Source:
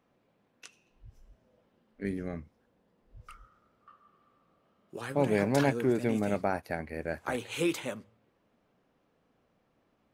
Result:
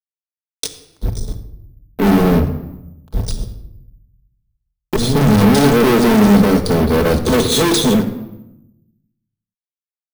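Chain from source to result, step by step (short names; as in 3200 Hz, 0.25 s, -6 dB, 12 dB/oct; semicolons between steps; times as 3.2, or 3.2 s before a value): 4.96–5.42 minimum comb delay 1.2 ms; FFT band-reject 510–3300 Hz; fuzz box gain 49 dB, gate -58 dBFS; shoebox room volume 2200 m³, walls furnished, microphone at 1.5 m; careless resampling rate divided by 3×, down filtered, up hold; mismatched tape noise reduction encoder only; gain +1 dB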